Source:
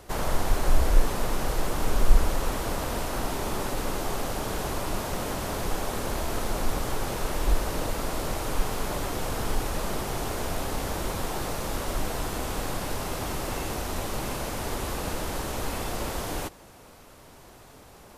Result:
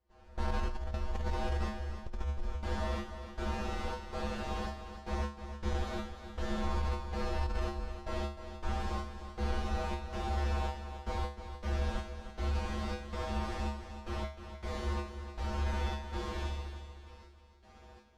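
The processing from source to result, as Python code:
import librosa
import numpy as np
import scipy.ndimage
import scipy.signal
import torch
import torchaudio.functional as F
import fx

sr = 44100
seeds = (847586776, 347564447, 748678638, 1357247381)

p1 = scipy.ndimage.median_filter(x, 5, mode='constant')
p2 = p1 + fx.room_flutter(p1, sr, wall_m=11.9, rt60_s=0.95, dry=0)
p3 = fx.step_gate(p2, sr, bpm=80, pattern='..xxx.xxx..x..xx', floor_db=-24.0, edge_ms=4.5)
p4 = scipy.signal.sosfilt(scipy.signal.butter(2, 6900.0, 'lowpass', fs=sr, output='sos'), p3)
p5 = fx.low_shelf(p4, sr, hz=96.0, db=7.5)
p6 = fx.comb_fb(p5, sr, f0_hz=71.0, decay_s=0.37, harmonics='odd', damping=0.0, mix_pct=100)
p7 = fx.echo_feedback(p6, sr, ms=306, feedback_pct=43, wet_db=-10)
p8 = fx.over_compress(p7, sr, threshold_db=-34.0, ratio=-1.0)
y = p8 * librosa.db_to_amplitude(3.0)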